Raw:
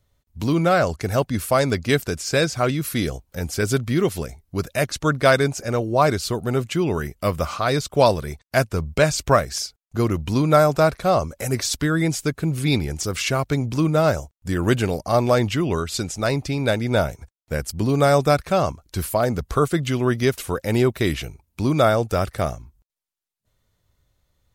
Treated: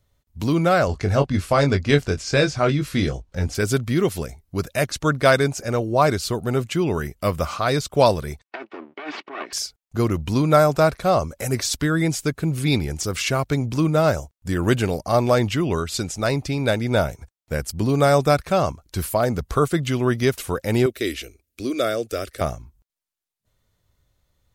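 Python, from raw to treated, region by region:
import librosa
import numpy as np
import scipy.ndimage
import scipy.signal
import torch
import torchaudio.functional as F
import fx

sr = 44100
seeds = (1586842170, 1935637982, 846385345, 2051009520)

y = fx.chain(x, sr, fx.lowpass(hz=5900.0, slope=12),
    fx.low_shelf(hz=65.0, db=10.5),
    fx.doubler(ms=21.0, db=-6.5), at=(0.87, 3.55))
y = fx.chain(y, sr, fx.lower_of_two(delay_ms=2.7),
    fx.over_compress(threshold_db=-26.0, ratio=-1.0),
    fx.cabinet(low_hz=310.0, low_slope=24, high_hz=3000.0, hz=(470.0, 720.0, 1500.0), db=(-8, -4, -3)), at=(8.44, 9.53))
y = fx.chain(y, sr, fx.low_shelf(hz=150.0, db=-9.5),
    fx.fixed_phaser(hz=370.0, stages=4), at=(20.86, 22.41))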